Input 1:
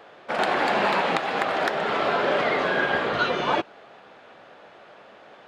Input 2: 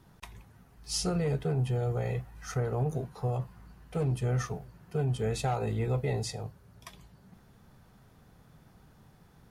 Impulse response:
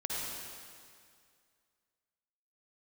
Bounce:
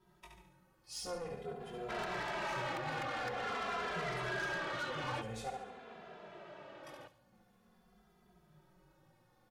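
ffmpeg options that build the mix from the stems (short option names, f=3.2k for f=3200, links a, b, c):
-filter_complex "[0:a]acrossover=split=920|2100[a][b][c];[a]acompressor=threshold=-39dB:ratio=4[d];[b]acompressor=threshold=-28dB:ratio=4[e];[c]acompressor=threshold=-40dB:ratio=4[f];[d][e][f]amix=inputs=3:normalize=0,adelay=1600,volume=-3dB,asplit=2[g][h];[h]volume=-18.5dB[i];[1:a]bass=f=250:g=-13,treble=f=4k:g=-2,aecho=1:1:5.5:0.64,flanger=delay=16.5:depth=5.6:speed=0.97,volume=-4.5dB,asplit=3[j][k][l];[j]atrim=end=5.5,asetpts=PTS-STARTPTS,afade=t=out:st=5.496:d=0.004:c=hsin[m];[k]atrim=start=5.5:end=6.83,asetpts=PTS-STARTPTS,volume=0[n];[l]atrim=start=6.83,asetpts=PTS-STARTPTS,afade=t=in:d=0.004:c=hsin[o];[m][n][o]concat=n=3:v=0:a=1,asplit=2[p][q];[q]volume=-5dB[r];[i][r]amix=inputs=2:normalize=0,aecho=0:1:71|142|213|284|355|426:1|0.44|0.194|0.0852|0.0375|0.0165[s];[g][p][s]amix=inputs=3:normalize=0,lowshelf=f=460:g=7.5,asoftclip=type=tanh:threshold=-32.5dB,asplit=2[t][u];[u]adelay=2.6,afreqshift=-0.48[v];[t][v]amix=inputs=2:normalize=1"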